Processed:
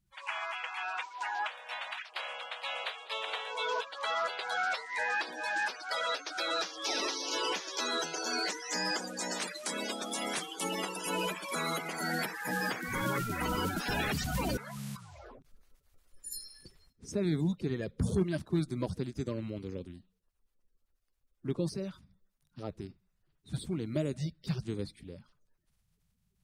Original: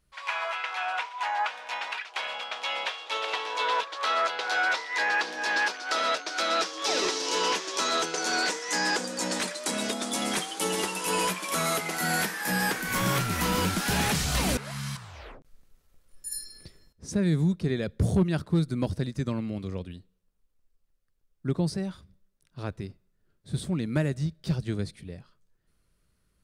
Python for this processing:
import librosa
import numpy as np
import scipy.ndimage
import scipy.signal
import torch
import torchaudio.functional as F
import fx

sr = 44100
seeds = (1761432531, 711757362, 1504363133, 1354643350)

y = fx.spec_quant(x, sr, step_db=30)
y = F.gain(torch.from_numpy(y), -5.5).numpy()